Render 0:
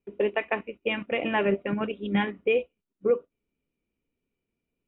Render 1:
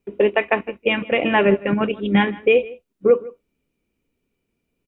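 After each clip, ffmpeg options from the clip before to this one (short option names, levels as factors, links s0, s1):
-filter_complex "[0:a]asplit=2[s0][s1];[s1]adelay=157.4,volume=0.1,highshelf=f=4000:g=-3.54[s2];[s0][s2]amix=inputs=2:normalize=0,volume=2.66"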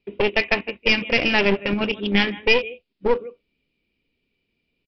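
-af "highshelf=f=1900:t=q:w=1.5:g=8,aresample=11025,aeval=exprs='clip(val(0),-1,0.075)':c=same,aresample=44100,volume=0.841"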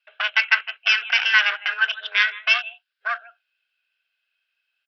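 -af "highpass=f=1300:t=q:w=13,afreqshift=220,volume=0.794"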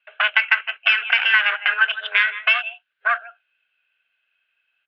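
-af "lowpass=f=3000:w=0.5412,lowpass=f=3000:w=1.3066,acompressor=threshold=0.112:ratio=6,volume=2.11"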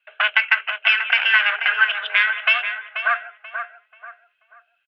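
-filter_complex "[0:a]bandreject=f=60:t=h:w=6,bandreject=f=120:t=h:w=6,bandreject=f=180:t=h:w=6,bandreject=f=240:t=h:w=6,bandreject=f=300:t=h:w=6,bandreject=f=360:t=h:w=6,bandreject=f=420:t=h:w=6,asplit=2[s0][s1];[s1]adelay=485,lowpass=f=2100:p=1,volume=0.447,asplit=2[s2][s3];[s3]adelay=485,lowpass=f=2100:p=1,volume=0.35,asplit=2[s4][s5];[s5]adelay=485,lowpass=f=2100:p=1,volume=0.35,asplit=2[s6][s7];[s7]adelay=485,lowpass=f=2100:p=1,volume=0.35[s8];[s2][s4][s6][s8]amix=inputs=4:normalize=0[s9];[s0][s9]amix=inputs=2:normalize=0"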